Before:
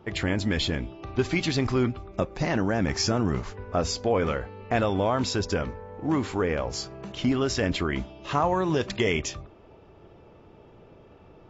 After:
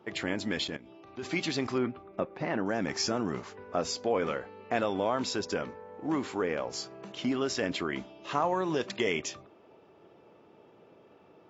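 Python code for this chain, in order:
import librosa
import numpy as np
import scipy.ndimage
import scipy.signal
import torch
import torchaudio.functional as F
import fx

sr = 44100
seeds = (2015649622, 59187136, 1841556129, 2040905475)

y = scipy.signal.sosfilt(scipy.signal.butter(2, 210.0, 'highpass', fs=sr, output='sos'), x)
y = fx.level_steps(y, sr, step_db=16, at=(0.64, 1.23))
y = fx.lowpass(y, sr, hz=2500.0, slope=12, at=(1.78, 2.66))
y = F.gain(torch.from_numpy(y), -4.0).numpy()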